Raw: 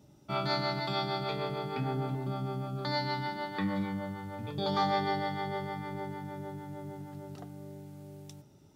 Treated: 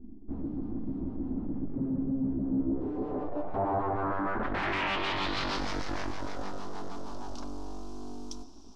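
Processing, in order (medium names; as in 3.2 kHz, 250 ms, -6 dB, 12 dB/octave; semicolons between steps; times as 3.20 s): Doppler pass-by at 3.56 s, 6 m/s, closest 8.6 m; bass shelf 120 Hz +11.5 dB; gain riding within 4 dB 0.5 s; full-wave rectifier; static phaser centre 520 Hz, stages 6; sine folder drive 4 dB, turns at -36.5 dBFS; low-pass sweep 240 Hz -> 5.6 kHz, 2.42–5.69 s; trim +7.5 dB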